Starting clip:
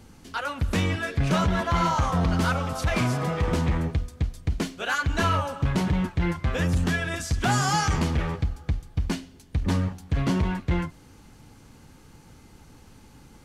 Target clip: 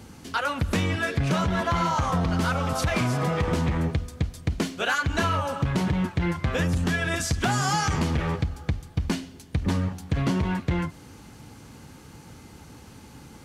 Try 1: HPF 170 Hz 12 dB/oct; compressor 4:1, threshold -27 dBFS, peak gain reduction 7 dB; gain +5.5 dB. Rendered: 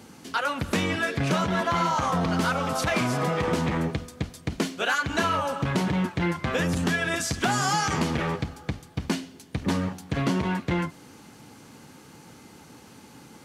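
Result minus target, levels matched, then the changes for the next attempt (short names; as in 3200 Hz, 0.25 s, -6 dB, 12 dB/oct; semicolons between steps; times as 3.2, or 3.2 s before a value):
125 Hz band -3.5 dB
change: HPF 63 Hz 12 dB/oct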